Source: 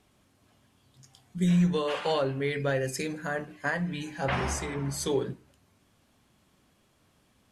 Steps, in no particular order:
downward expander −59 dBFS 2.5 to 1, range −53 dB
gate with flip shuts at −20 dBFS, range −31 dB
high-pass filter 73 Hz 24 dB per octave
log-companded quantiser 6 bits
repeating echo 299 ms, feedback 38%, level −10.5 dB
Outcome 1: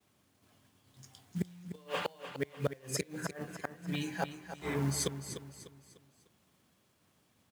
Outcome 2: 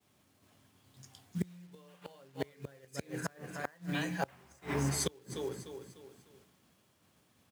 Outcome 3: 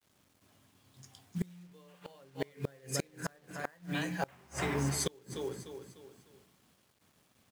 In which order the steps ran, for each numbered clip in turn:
gate with flip, then high-pass filter, then log-companded quantiser, then downward expander, then repeating echo
repeating echo, then gate with flip, then log-companded quantiser, then high-pass filter, then downward expander
repeating echo, then downward expander, then high-pass filter, then gate with flip, then log-companded quantiser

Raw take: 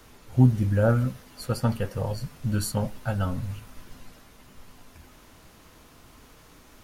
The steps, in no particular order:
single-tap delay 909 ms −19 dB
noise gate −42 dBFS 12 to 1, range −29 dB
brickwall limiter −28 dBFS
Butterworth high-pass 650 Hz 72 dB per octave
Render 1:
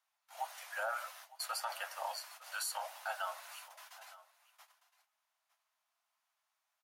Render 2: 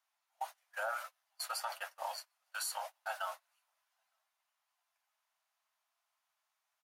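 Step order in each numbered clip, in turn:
noise gate, then Butterworth high-pass, then brickwall limiter, then single-tap delay
Butterworth high-pass, then brickwall limiter, then single-tap delay, then noise gate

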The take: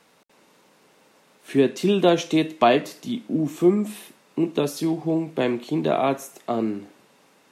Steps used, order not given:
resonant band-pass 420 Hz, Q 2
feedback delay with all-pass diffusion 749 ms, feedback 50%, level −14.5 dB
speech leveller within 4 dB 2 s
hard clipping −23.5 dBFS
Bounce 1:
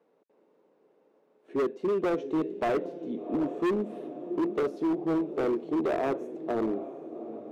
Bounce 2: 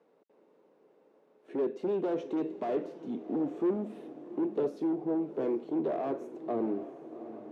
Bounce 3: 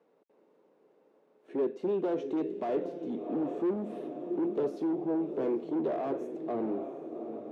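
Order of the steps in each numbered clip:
feedback delay with all-pass diffusion, then speech leveller, then resonant band-pass, then hard clipping
hard clipping, then feedback delay with all-pass diffusion, then speech leveller, then resonant band-pass
feedback delay with all-pass diffusion, then speech leveller, then hard clipping, then resonant band-pass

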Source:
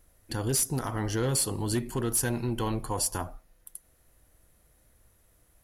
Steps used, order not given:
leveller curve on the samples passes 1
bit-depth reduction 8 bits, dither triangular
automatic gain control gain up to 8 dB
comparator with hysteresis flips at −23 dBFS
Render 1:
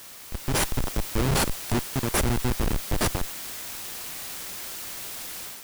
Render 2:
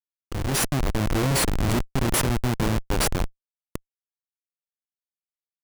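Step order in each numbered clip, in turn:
comparator with hysteresis, then bit-depth reduction, then automatic gain control, then leveller curve on the samples
bit-depth reduction, then leveller curve on the samples, then comparator with hysteresis, then automatic gain control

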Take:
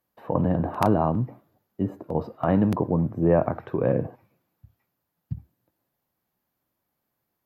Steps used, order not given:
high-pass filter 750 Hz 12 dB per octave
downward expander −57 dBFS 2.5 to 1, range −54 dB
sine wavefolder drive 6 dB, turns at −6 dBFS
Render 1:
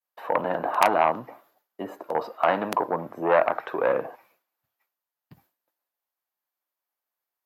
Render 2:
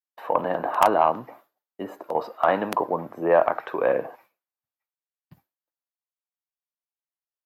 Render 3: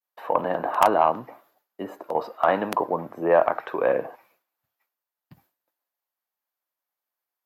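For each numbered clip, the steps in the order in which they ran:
sine wavefolder, then high-pass filter, then downward expander
high-pass filter, then downward expander, then sine wavefolder
high-pass filter, then sine wavefolder, then downward expander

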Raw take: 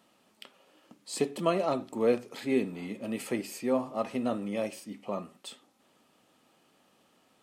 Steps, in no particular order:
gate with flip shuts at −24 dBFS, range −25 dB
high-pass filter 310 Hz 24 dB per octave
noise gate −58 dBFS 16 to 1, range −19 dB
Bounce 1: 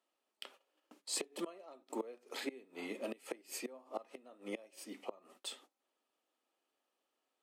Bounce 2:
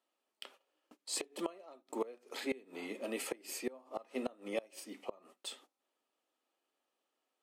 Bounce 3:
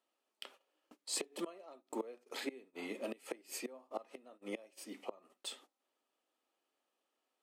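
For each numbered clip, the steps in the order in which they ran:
gate with flip, then noise gate, then high-pass filter
high-pass filter, then gate with flip, then noise gate
gate with flip, then high-pass filter, then noise gate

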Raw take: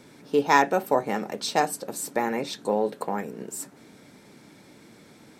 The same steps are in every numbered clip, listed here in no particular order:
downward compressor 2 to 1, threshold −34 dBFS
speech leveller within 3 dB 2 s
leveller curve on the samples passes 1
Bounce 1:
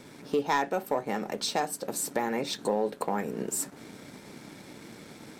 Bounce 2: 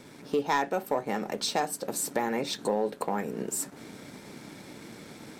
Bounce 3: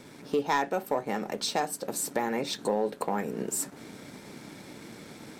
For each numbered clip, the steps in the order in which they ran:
downward compressor, then leveller curve on the samples, then speech leveller
speech leveller, then downward compressor, then leveller curve on the samples
downward compressor, then speech leveller, then leveller curve on the samples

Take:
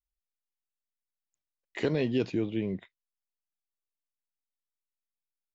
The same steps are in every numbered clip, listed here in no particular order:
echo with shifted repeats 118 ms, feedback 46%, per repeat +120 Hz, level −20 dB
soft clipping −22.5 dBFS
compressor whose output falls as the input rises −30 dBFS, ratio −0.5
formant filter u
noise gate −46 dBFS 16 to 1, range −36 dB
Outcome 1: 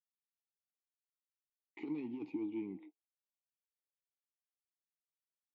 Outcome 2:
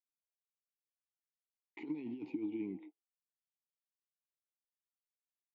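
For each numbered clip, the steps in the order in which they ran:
soft clipping, then compressor whose output falls as the input rises, then echo with shifted repeats, then noise gate, then formant filter
echo with shifted repeats, then noise gate, then compressor whose output falls as the input rises, then formant filter, then soft clipping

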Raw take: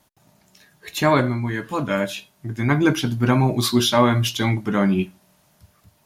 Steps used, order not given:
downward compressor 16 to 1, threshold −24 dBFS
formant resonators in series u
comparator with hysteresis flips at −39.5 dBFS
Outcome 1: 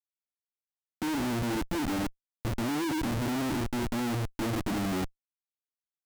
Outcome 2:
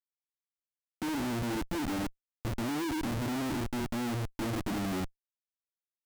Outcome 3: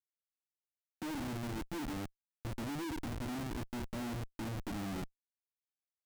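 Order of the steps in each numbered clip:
formant resonators in series, then comparator with hysteresis, then downward compressor
formant resonators in series, then downward compressor, then comparator with hysteresis
downward compressor, then formant resonators in series, then comparator with hysteresis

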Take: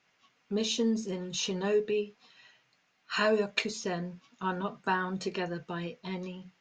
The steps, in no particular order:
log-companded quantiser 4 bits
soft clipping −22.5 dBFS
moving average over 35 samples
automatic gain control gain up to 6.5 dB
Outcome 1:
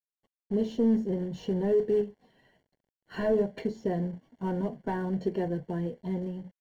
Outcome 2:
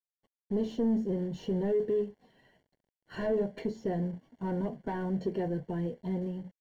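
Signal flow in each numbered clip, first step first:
soft clipping, then automatic gain control, then log-companded quantiser, then moving average
automatic gain control, then log-companded quantiser, then soft clipping, then moving average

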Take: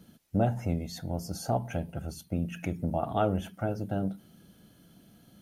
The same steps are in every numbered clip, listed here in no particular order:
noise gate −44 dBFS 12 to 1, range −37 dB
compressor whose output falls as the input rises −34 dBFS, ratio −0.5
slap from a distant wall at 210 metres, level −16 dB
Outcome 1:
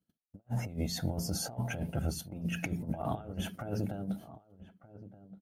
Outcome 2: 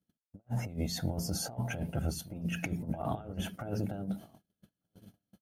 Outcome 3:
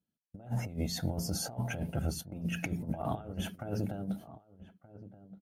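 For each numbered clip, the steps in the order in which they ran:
compressor whose output falls as the input rises, then noise gate, then slap from a distant wall
compressor whose output falls as the input rises, then slap from a distant wall, then noise gate
noise gate, then compressor whose output falls as the input rises, then slap from a distant wall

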